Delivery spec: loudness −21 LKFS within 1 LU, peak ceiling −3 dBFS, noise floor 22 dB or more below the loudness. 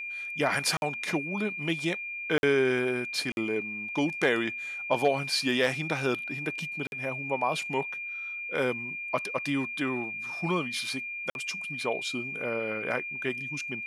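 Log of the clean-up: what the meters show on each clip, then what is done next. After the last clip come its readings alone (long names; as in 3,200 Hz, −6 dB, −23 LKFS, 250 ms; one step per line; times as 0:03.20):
number of dropouts 5; longest dropout 51 ms; interfering tone 2,400 Hz; level of the tone −34 dBFS; integrated loudness −29.5 LKFS; sample peak −12.5 dBFS; target loudness −21.0 LKFS
→ repair the gap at 0:00.77/0:02.38/0:03.32/0:06.87/0:11.30, 51 ms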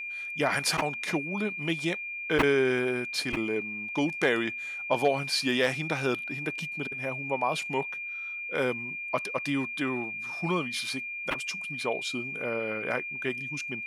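number of dropouts 0; interfering tone 2,400 Hz; level of the tone −34 dBFS
→ notch filter 2,400 Hz, Q 30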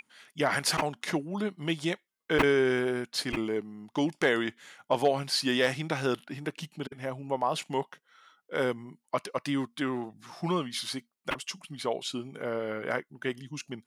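interfering tone none found; integrated loudness −31.0 LKFS; sample peak −11.0 dBFS; target loudness −21.0 LKFS
→ level +10 dB
brickwall limiter −3 dBFS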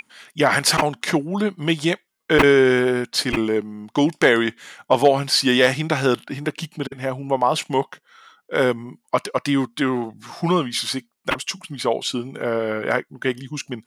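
integrated loudness −21.0 LKFS; sample peak −3.0 dBFS; background noise floor −69 dBFS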